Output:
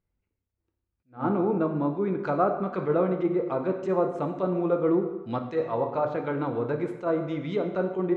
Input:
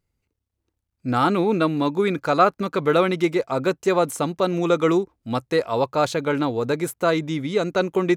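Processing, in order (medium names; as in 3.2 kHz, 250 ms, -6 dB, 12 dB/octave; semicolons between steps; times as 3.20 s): level-controlled noise filter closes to 2.4 kHz, open at -20 dBFS; 5.42–6.56 s: hum notches 50/100/150/200/250/300/350/400/450/500 Hz; low-pass that closes with the level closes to 950 Hz, closed at -17.5 dBFS; plate-style reverb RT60 1.1 s, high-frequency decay 0.75×, DRR 4.5 dB; attacks held to a fixed rise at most 250 dB/s; trim -5.5 dB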